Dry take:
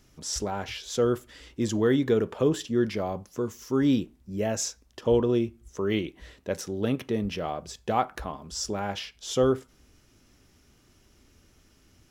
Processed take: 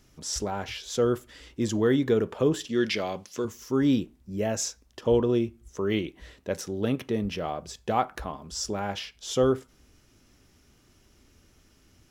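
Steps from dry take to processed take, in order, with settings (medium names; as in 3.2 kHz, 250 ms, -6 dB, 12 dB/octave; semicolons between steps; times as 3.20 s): 2.69–3.45 s: frequency weighting D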